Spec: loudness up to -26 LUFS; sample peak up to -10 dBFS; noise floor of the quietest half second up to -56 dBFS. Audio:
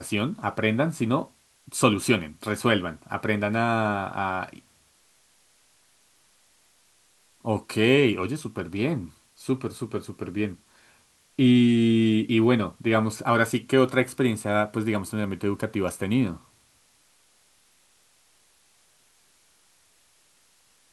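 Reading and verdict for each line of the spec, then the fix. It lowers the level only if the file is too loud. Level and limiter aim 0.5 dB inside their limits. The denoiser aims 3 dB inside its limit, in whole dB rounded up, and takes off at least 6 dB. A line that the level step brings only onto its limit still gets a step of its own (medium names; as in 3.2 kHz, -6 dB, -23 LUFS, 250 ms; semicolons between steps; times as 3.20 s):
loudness -24.5 LUFS: fail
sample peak -4.0 dBFS: fail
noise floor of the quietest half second -62 dBFS: pass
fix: trim -2 dB; peak limiter -10.5 dBFS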